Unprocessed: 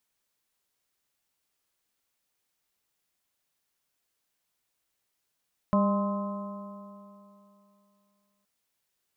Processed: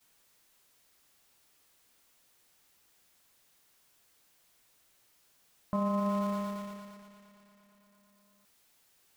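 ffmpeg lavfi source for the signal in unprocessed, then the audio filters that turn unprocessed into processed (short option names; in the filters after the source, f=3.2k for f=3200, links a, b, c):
-f lavfi -i "aevalsrc='0.0891*pow(10,-3*t/2.84)*sin(2*PI*199.37*t)+0.01*pow(10,-3*t/2.84)*sin(2*PI*400.93*t)+0.0501*pow(10,-3*t/2.84)*sin(2*PI*606.86*t)+0.00944*pow(10,-3*t/2.84)*sin(2*PI*819.22*t)+0.0473*pow(10,-3*t/2.84)*sin(2*PI*1040*t)+0.0133*pow(10,-3*t/2.84)*sin(2*PI*1271.04*t)':d=2.72:s=44100"
-af "aeval=exprs='val(0)+0.5*0.0119*sgn(val(0))':c=same,agate=range=-33dB:threshold=-33dB:ratio=3:detection=peak,alimiter=limit=-23.5dB:level=0:latency=1"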